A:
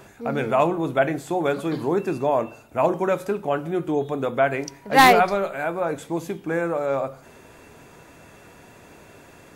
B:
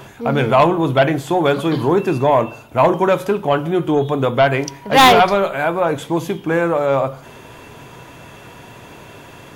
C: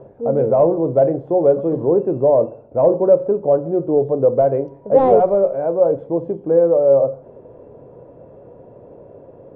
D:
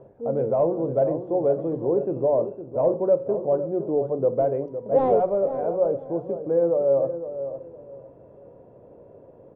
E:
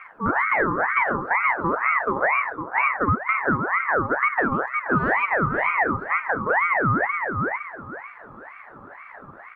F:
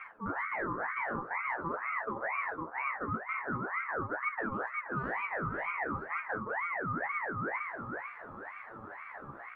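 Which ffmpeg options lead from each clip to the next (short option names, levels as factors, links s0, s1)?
-af "aeval=exprs='0.631*sin(PI/2*2*val(0)/0.631)':c=same,equalizer=f=125:t=o:w=0.33:g=8,equalizer=f=1000:t=o:w=0.33:g=5,equalizer=f=3150:t=o:w=0.33:g=8,equalizer=f=8000:t=o:w=0.33:g=-4,volume=0.75"
-af "lowpass=f=530:t=q:w=4.7,volume=0.473"
-filter_complex "[0:a]asplit=2[s0][s1];[s1]adelay=509,lowpass=f=1500:p=1,volume=0.316,asplit=2[s2][s3];[s3]adelay=509,lowpass=f=1500:p=1,volume=0.24,asplit=2[s4][s5];[s5]adelay=509,lowpass=f=1500:p=1,volume=0.24[s6];[s0][s2][s4][s6]amix=inputs=4:normalize=0,volume=0.422"
-af "acompressor=threshold=0.0631:ratio=6,aeval=exprs='val(0)*sin(2*PI*1200*n/s+1200*0.45/2.1*sin(2*PI*2.1*n/s))':c=same,volume=2.66"
-af "areverse,acompressor=threshold=0.0355:ratio=6,areverse,flanger=delay=8.9:depth=9.1:regen=24:speed=0.46:shape=sinusoidal"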